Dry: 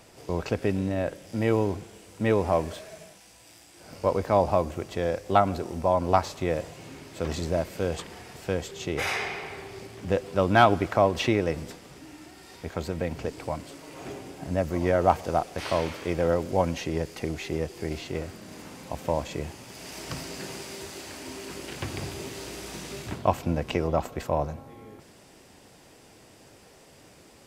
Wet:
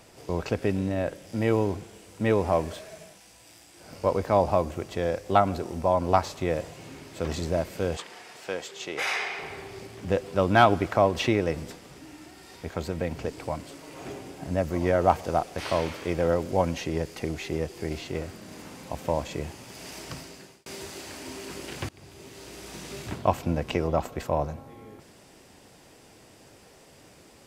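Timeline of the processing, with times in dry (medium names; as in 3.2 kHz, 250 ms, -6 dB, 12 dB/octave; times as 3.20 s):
7.97–9.39 s: frequency weighting A
19.88–20.66 s: fade out
21.89–23.06 s: fade in, from -23.5 dB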